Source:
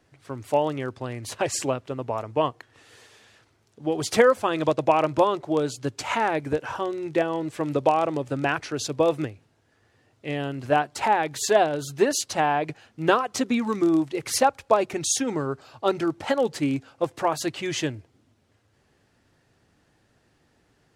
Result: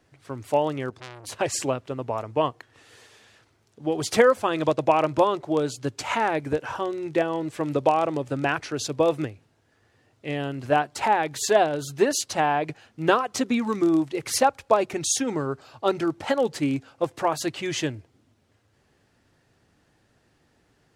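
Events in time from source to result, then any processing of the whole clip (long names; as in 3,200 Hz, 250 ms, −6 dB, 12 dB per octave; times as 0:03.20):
0:00.90–0:01.33: saturating transformer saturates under 3,300 Hz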